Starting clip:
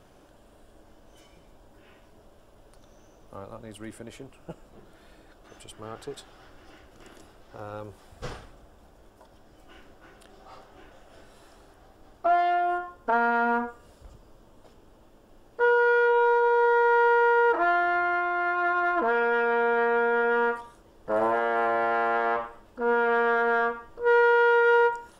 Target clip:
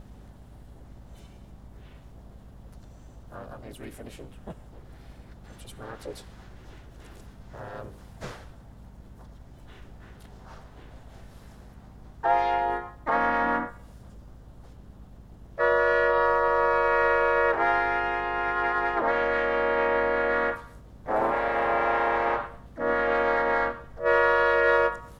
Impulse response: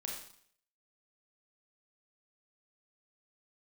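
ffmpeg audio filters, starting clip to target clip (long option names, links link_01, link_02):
-filter_complex "[0:a]aeval=exprs='val(0)+0.00562*(sin(2*PI*50*n/s)+sin(2*PI*2*50*n/s)/2+sin(2*PI*3*50*n/s)/3+sin(2*PI*4*50*n/s)/4+sin(2*PI*5*50*n/s)/5)':channel_layout=same,asplit=2[link_01][link_02];[1:a]atrim=start_sample=2205,adelay=26[link_03];[link_02][link_03]afir=irnorm=-1:irlink=0,volume=-15.5dB[link_04];[link_01][link_04]amix=inputs=2:normalize=0,asplit=4[link_05][link_06][link_07][link_08];[link_06]asetrate=33038,aresample=44100,atempo=1.33484,volume=-11dB[link_09];[link_07]asetrate=52444,aresample=44100,atempo=0.840896,volume=-2dB[link_10];[link_08]asetrate=58866,aresample=44100,atempo=0.749154,volume=-5dB[link_11];[link_05][link_09][link_10][link_11]amix=inputs=4:normalize=0,volume=-4dB"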